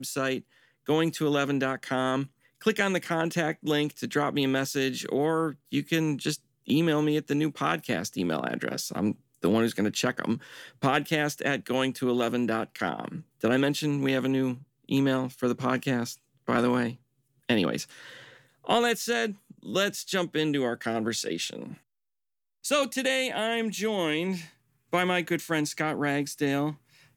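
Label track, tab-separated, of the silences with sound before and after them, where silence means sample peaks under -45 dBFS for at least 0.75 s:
21.770000	22.640000	silence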